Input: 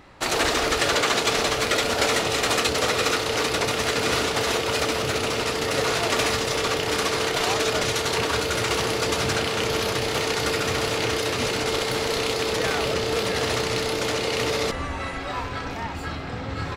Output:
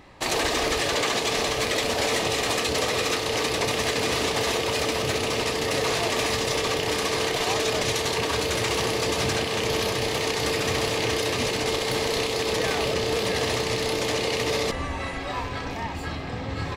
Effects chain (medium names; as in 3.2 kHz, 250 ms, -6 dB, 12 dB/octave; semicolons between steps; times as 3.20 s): band-stop 1.4 kHz, Q 5.4; peak limiter -14.5 dBFS, peak gain reduction 5 dB